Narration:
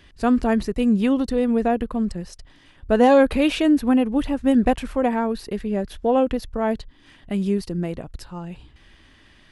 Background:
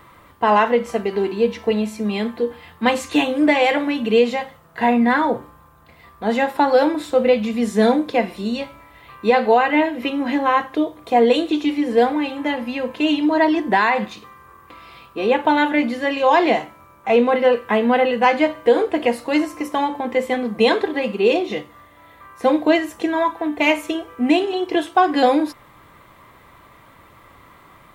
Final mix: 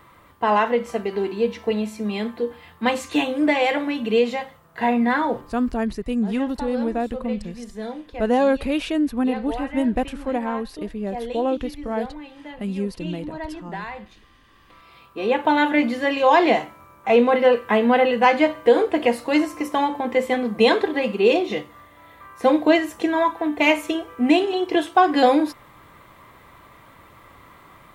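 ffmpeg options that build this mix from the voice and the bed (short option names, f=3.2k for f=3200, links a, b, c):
-filter_complex "[0:a]adelay=5300,volume=-4dB[a];[1:a]volume=12.5dB,afade=t=out:st=5.64:d=0.32:silence=0.223872,afade=t=in:st=14.4:d=1.36:silence=0.158489[b];[a][b]amix=inputs=2:normalize=0"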